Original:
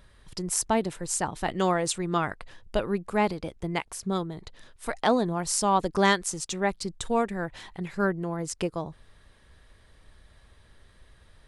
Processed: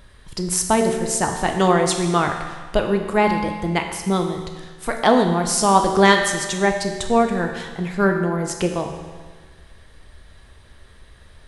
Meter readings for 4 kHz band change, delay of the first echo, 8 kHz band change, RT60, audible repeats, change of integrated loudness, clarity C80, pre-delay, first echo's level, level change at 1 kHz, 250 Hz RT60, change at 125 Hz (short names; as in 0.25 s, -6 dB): +8.0 dB, none, +6.5 dB, 1.5 s, none, +8.5 dB, 7.0 dB, 13 ms, none, +8.5 dB, 1.5 s, +8.5 dB